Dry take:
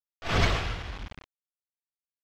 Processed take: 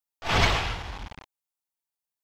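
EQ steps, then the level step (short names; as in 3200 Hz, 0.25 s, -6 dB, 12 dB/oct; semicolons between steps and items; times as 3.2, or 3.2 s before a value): bell 870 Hz +8 dB 0.49 oct; dynamic EQ 2700 Hz, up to +4 dB, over -38 dBFS, Q 0.82; high shelf 6400 Hz +7.5 dB; 0.0 dB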